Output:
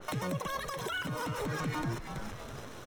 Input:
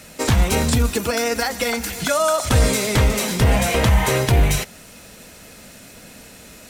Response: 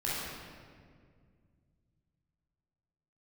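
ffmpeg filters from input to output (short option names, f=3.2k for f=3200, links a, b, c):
-filter_complex "[0:a]acompressor=threshold=-24dB:ratio=6,acrusher=bits=7:dc=4:mix=0:aa=0.000001,adynamicsmooth=sensitivity=3.5:basefreq=2.4k,asuperstop=centerf=2000:order=20:qfactor=7.8,asetrate=103194,aresample=44100,asplit=2[a][b];[b]asplit=4[c][d][e][f];[c]adelay=328,afreqshift=-130,volume=-12dB[g];[d]adelay=656,afreqshift=-260,volume=-19.5dB[h];[e]adelay=984,afreqshift=-390,volume=-27.1dB[i];[f]adelay=1312,afreqshift=-520,volume=-34.6dB[j];[g][h][i][j]amix=inputs=4:normalize=0[k];[a][k]amix=inputs=2:normalize=0,alimiter=level_in=1dB:limit=-24dB:level=0:latency=1:release=287,volume=-1dB,adynamicequalizer=threshold=0.00282:dfrequency=2600:dqfactor=0.7:tfrequency=2600:tqfactor=0.7:attack=5:release=100:ratio=0.375:range=3:mode=cutabove:tftype=highshelf"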